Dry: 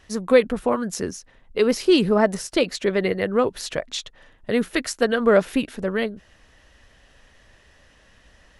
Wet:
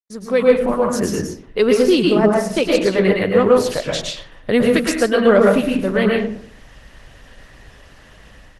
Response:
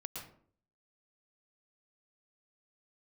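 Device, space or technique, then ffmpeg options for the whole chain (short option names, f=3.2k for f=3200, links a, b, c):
speakerphone in a meeting room: -filter_complex "[1:a]atrim=start_sample=2205[a];[0:a][a]afir=irnorm=-1:irlink=0,asplit=2[b][c];[c]adelay=110,highpass=300,lowpass=3.4k,asoftclip=type=hard:threshold=-15dB,volume=-20dB[d];[b][d]amix=inputs=2:normalize=0,dynaudnorm=f=110:g=7:m=13dB,agate=range=-51dB:threshold=-47dB:ratio=16:detection=peak" -ar 48000 -c:a libopus -b:a 20k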